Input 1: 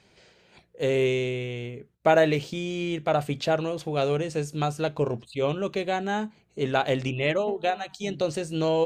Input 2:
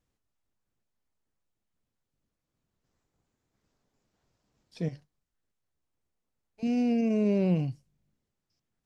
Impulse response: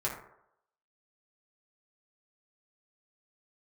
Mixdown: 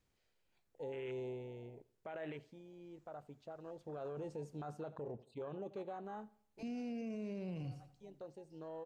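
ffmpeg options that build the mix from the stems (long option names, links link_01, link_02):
-filter_complex "[0:a]afwtdn=0.0316,lowshelf=frequency=290:gain=-8.5,alimiter=limit=-20dB:level=0:latency=1:release=48,volume=1.5dB,afade=type=out:start_time=1.85:duration=0.78:silence=0.316228,afade=type=in:start_time=3.59:duration=0.61:silence=0.251189,afade=type=out:start_time=5.66:duration=0.72:silence=0.266073,asplit=2[link_01][link_02];[link_02]volume=-22.5dB[link_03];[1:a]acrossover=split=750|1700[link_04][link_05][link_06];[link_04]acompressor=threshold=-37dB:ratio=4[link_07];[link_05]acompressor=threshold=-56dB:ratio=4[link_08];[link_06]acompressor=threshold=-56dB:ratio=4[link_09];[link_07][link_08][link_09]amix=inputs=3:normalize=0,volume=-0.5dB,asplit=3[link_10][link_11][link_12];[link_10]atrim=end=4.71,asetpts=PTS-STARTPTS,afade=type=out:start_time=4.706:duration=0.004:curve=hsin[link_13];[link_11]atrim=start=4.71:end=6.04,asetpts=PTS-STARTPTS,volume=0[link_14];[link_12]atrim=start=6.04,asetpts=PTS-STARTPTS,afade=type=in:duration=0.004:curve=hsin[link_15];[link_13][link_14][link_15]concat=n=3:v=0:a=1,asplit=3[link_16][link_17][link_18];[link_17]volume=-14dB[link_19];[link_18]apad=whole_len=390584[link_20];[link_01][link_20]sidechaincompress=threshold=-53dB:ratio=8:attack=16:release=245[link_21];[link_03][link_19]amix=inputs=2:normalize=0,aecho=0:1:84|168|252|336|420:1|0.38|0.144|0.0549|0.0209[link_22];[link_21][link_16][link_22]amix=inputs=3:normalize=0,alimiter=level_in=13dB:limit=-24dB:level=0:latency=1:release=15,volume=-13dB"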